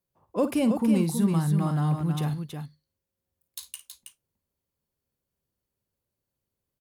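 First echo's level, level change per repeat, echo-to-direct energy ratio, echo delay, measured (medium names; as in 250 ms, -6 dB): -13.0 dB, no regular repeats, -5.5 dB, 54 ms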